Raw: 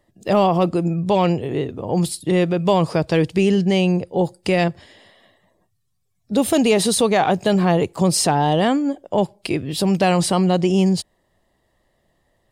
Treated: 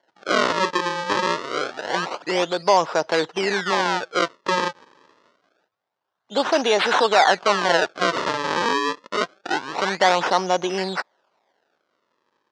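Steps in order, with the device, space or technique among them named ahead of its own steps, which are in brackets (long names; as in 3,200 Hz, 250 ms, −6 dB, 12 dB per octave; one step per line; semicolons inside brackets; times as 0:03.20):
circuit-bent sampling toy (sample-and-hold swept by an LFO 35×, swing 160% 0.26 Hz; loudspeaker in its box 570–5,700 Hz, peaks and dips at 920 Hz +4 dB, 1,500 Hz +4 dB, 2,400 Hz −4 dB)
level +2.5 dB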